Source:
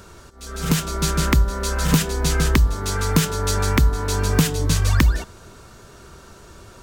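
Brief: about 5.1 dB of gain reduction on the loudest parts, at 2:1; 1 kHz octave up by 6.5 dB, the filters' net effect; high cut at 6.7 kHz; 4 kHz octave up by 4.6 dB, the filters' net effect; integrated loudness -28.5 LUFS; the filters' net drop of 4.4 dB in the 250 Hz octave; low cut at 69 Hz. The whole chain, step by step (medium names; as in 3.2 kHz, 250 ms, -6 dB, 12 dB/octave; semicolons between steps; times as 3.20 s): high-pass 69 Hz; low-pass 6.7 kHz; peaking EQ 250 Hz -7.5 dB; peaking EQ 1 kHz +8 dB; peaking EQ 4 kHz +6 dB; compression 2:1, threshold -22 dBFS; trim -4 dB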